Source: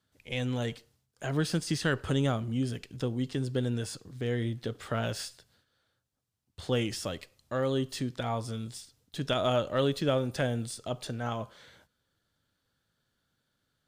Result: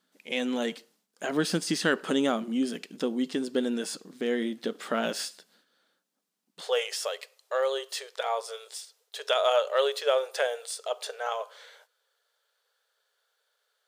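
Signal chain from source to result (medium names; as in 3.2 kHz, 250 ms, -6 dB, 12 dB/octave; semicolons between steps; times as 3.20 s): brick-wall FIR high-pass 170 Hz, from 6.61 s 400 Hz; trim +4.5 dB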